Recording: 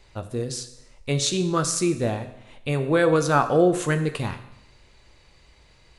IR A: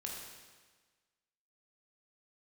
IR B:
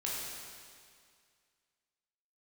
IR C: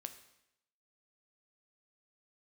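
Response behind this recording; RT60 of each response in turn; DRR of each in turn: C; 1.4, 2.1, 0.80 seconds; −2.0, −5.5, 7.5 decibels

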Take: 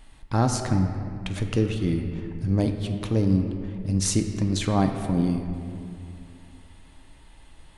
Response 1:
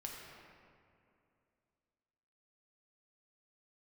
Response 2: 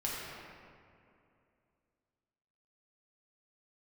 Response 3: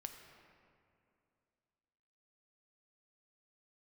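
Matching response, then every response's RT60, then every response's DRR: 3; 2.6, 2.6, 2.6 seconds; −2.0, −6.5, 4.5 decibels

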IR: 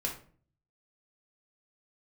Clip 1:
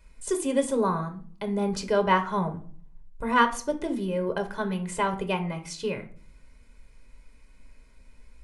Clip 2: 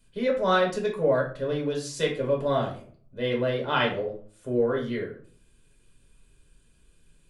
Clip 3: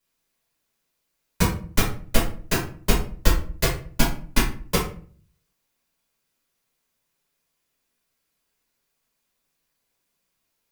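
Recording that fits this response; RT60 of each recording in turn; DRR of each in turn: 2; 0.45, 0.45, 0.45 seconds; 6.0, −1.5, −7.0 decibels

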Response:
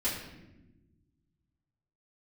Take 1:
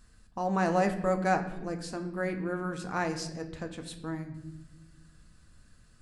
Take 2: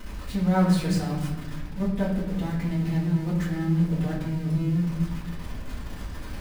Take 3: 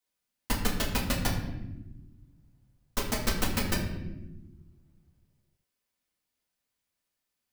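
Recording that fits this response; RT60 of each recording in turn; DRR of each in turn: 2; non-exponential decay, 1.1 s, non-exponential decay; 5.0, −10.5, −4.0 decibels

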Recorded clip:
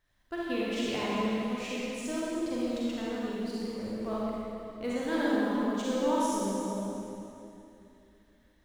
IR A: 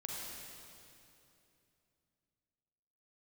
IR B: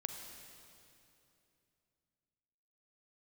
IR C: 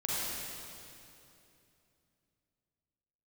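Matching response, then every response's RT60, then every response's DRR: C; 2.8, 2.8, 2.8 seconds; −3.0, 4.5, −7.5 decibels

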